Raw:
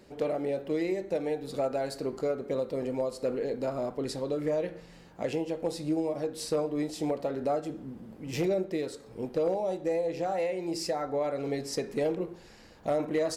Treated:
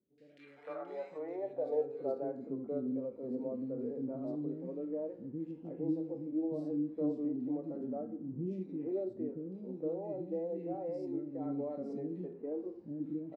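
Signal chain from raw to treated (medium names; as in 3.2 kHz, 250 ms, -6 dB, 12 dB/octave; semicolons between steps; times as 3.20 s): harmonic-percussive split percussive -10 dB; three bands offset in time lows, highs, mids 180/460 ms, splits 320/2200 Hz; band-pass sweep 1.7 kHz -> 260 Hz, 0.51–2.52 s; trim +4 dB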